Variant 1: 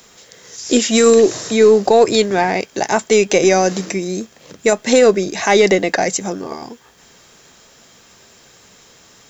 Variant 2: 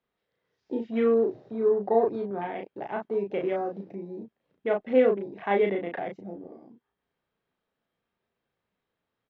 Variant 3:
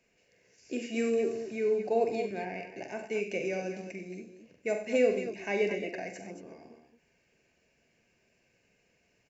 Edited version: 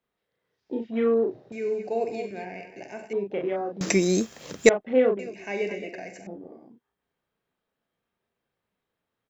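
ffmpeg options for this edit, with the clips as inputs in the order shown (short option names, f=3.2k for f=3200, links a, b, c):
-filter_complex "[2:a]asplit=2[a][b];[1:a]asplit=4[c][d][e][f];[c]atrim=end=1.522[g];[a]atrim=start=1.518:end=3.132[h];[d]atrim=start=3.128:end=3.812[i];[0:a]atrim=start=3.808:end=4.692[j];[e]atrim=start=4.688:end=5.192[k];[b]atrim=start=5.188:end=6.272[l];[f]atrim=start=6.268[m];[g][h]acrossfade=d=0.004:c1=hsin:c2=hsin[n];[n][i]acrossfade=d=0.004:c1=hsin:c2=hsin[o];[o][j]acrossfade=d=0.004:c1=hsin:c2=hsin[p];[p][k]acrossfade=d=0.004:c1=hsin:c2=hsin[q];[q][l]acrossfade=d=0.004:c1=hsin:c2=hsin[r];[r][m]acrossfade=d=0.004:c1=hsin:c2=hsin"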